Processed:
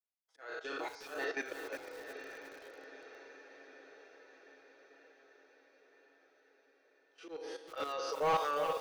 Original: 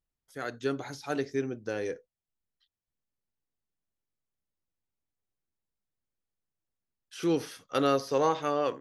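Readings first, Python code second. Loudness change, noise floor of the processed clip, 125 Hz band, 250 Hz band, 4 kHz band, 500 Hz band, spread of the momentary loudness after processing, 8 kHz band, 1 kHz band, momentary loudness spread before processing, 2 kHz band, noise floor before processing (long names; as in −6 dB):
−8.0 dB, −72 dBFS, below −15 dB, −17.5 dB, −5.0 dB, −8.5 dB, 24 LU, −7.0 dB, −3.5 dB, 12 LU, −1.0 dB, below −85 dBFS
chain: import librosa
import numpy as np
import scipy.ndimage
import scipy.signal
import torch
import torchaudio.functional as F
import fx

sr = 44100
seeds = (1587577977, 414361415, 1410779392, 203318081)

y = fx.spec_trails(x, sr, decay_s=1.62)
y = scipy.signal.sosfilt(scipy.signal.butter(4, 410.0, 'highpass', fs=sr, output='sos'), y)
y = fx.dereverb_blind(y, sr, rt60_s=1.3)
y = y + 0.85 * np.pad(y, (int(6.2 * sr / 1000.0), 0))[:len(y)]
y = fx.level_steps(y, sr, step_db=13)
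y = fx.auto_swell(y, sr, attack_ms=158.0)
y = 10.0 ** (-30.5 / 20.0) * np.tanh(y / 10.0 ** (-30.5 / 20.0))
y = fx.tremolo_shape(y, sr, shape='saw_up', hz=0.57, depth_pct=95)
y = fx.air_absorb(y, sr, metres=110.0)
y = fx.echo_diffused(y, sr, ms=918, feedback_pct=61, wet_db=-9)
y = fx.echo_crushed(y, sr, ms=359, feedback_pct=35, bits=9, wet_db=-8)
y = y * librosa.db_to_amplitude(7.5)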